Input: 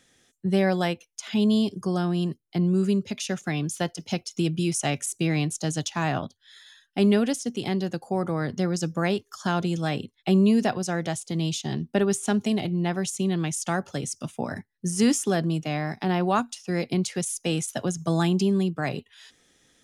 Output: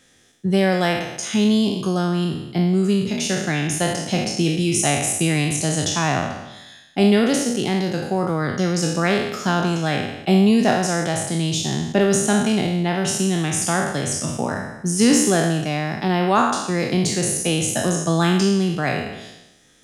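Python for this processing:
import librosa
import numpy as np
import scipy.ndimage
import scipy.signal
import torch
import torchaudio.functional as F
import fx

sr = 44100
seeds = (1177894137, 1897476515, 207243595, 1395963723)

y = fx.spec_trails(x, sr, decay_s=0.98)
y = F.gain(torch.from_numpy(y), 4.0).numpy()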